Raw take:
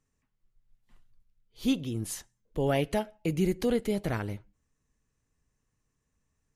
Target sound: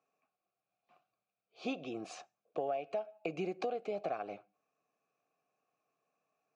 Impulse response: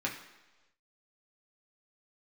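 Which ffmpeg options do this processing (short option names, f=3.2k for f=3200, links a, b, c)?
-filter_complex "[0:a]asplit=3[a][b][c];[a]bandpass=f=730:t=q:w=8,volume=0dB[d];[b]bandpass=f=1.09k:t=q:w=8,volume=-6dB[e];[c]bandpass=f=2.44k:t=q:w=8,volume=-9dB[f];[d][e][f]amix=inputs=3:normalize=0,highpass=f=150:w=0.5412,highpass=f=150:w=1.3066,equalizer=f=230:t=q:w=4:g=-5,equalizer=f=1k:t=q:w=4:g=-8,equalizer=f=3.1k:t=q:w=4:g=-8,lowpass=f=7k:w=0.5412,lowpass=f=7k:w=1.3066,acompressor=threshold=-50dB:ratio=12,volume=17dB"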